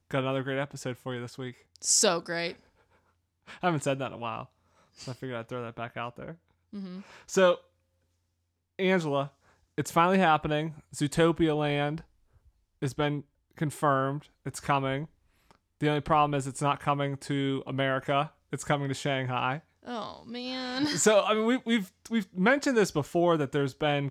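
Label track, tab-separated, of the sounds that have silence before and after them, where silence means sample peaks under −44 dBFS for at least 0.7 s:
3.480000	7.580000	sound
8.790000	12.010000	sound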